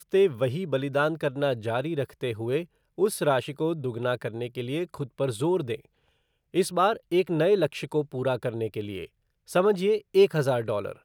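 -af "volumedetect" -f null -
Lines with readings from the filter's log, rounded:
mean_volume: -26.6 dB
max_volume: -8.9 dB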